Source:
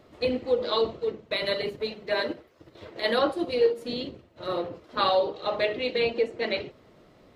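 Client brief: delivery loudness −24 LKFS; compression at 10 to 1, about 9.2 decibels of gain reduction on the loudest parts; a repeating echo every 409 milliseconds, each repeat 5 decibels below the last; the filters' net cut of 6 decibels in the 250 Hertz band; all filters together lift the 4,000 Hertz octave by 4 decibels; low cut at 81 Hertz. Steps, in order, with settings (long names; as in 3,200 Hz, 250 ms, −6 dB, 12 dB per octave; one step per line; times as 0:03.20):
high-pass filter 81 Hz
parametric band 250 Hz −8 dB
parametric band 4,000 Hz +4.5 dB
downward compressor 10 to 1, threshold −28 dBFS
repeating echo 409 ms, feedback 56%, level −5 dB
level +8.5 dB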